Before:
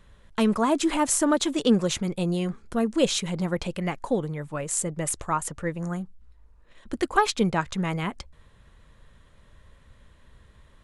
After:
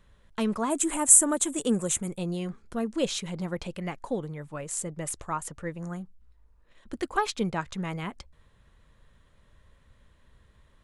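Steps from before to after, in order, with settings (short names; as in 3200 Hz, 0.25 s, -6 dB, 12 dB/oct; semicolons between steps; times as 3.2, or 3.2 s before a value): 0.7–2.17 resonant high shelf 6300 Hz +10 dB, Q 3; gain -5.5 dB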